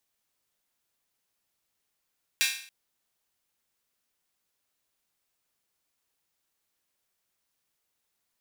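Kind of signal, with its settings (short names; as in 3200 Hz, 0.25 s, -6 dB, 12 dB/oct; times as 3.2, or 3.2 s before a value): open hi-hat length 0.28 s, high-pass 2200 Hz, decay 0.52 s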